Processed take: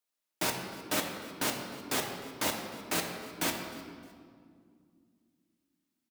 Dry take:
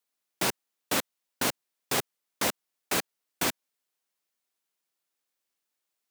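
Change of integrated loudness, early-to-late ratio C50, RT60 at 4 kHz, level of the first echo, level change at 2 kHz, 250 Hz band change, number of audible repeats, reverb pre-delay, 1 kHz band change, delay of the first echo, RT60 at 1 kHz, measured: −3.5 dB, 4.5 dB, 1.4 s, −20.0 dB, −2.5 dB, −0.5 dB, 2, 3 ms, −2.0 dB, 307 ms, 1.9 s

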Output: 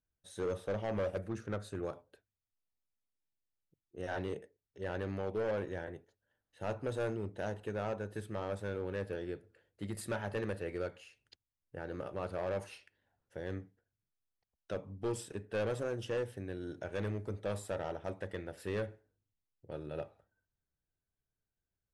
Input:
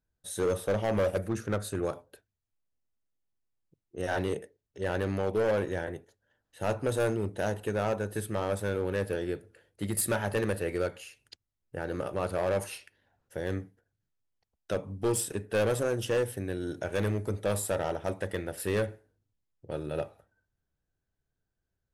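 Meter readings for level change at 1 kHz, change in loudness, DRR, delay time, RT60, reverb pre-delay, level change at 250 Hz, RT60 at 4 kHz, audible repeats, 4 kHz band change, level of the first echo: −8.0 dB, −8.0 dB, no reverb audible, no echo audible, no reverb audible, no reverb audible, −7.5 dB, no reverb audible, no echo audible, −9.5 dB, no echo audible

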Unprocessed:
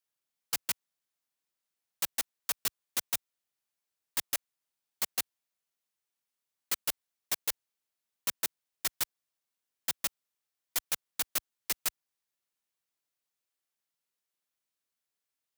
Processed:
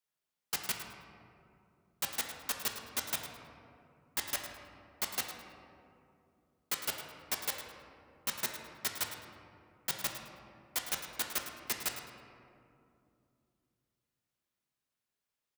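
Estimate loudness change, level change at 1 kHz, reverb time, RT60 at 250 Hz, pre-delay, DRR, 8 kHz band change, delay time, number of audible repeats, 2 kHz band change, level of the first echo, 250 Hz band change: −3.0 dB, +2.0 dB, 2.6 s, 3.6 s, 5 ms, 1.5 dB, −3.0 dB, 106 ms, 1, +0.5 dB, −12.0 dB, +3.0 dB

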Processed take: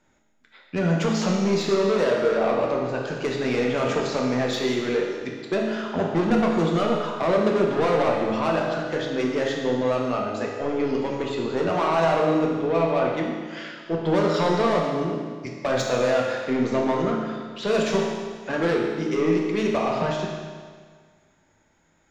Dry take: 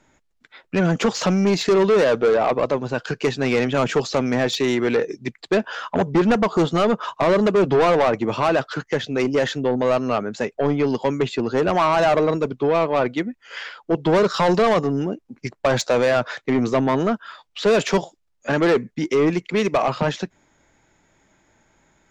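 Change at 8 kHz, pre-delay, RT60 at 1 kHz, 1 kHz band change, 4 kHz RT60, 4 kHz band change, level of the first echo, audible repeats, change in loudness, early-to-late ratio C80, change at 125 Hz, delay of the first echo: −4.0 dB, 7 ms, 1.7 s, −3.5 dB, 1.6 s, −4.0 dB, no echo audible, no echo audible, −3.5 dB, 3.5 dB, −3.0 dB, no echo audible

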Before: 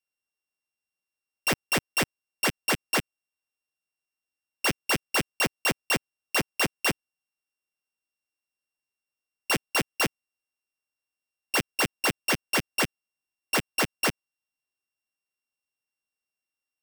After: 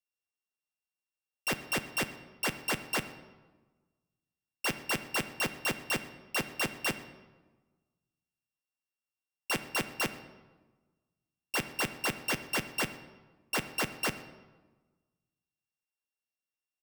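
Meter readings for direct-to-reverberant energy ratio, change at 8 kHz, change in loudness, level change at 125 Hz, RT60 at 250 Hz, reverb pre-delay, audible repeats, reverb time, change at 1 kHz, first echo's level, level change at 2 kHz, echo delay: 10.0 dB, −6.5 dB, −6.0 dB, −6.0 dB, 1.5 s, 4 ms, 1, 1.3 s, −6.0 dB, −22.0 dB, −6.0 dB, 125 ms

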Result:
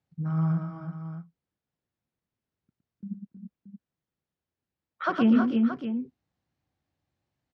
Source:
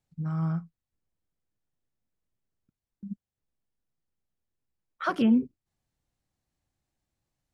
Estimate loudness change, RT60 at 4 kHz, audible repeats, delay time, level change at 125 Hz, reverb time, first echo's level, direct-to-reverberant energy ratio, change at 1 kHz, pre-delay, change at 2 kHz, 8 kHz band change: +1.0 dB, no reverb audible, 3, 113 ms, +3.5 dB, no reverb audible, −7.0 dB, no reverb audible, +3.0 dB, no reverb audible, +2.5 dB, can't be measured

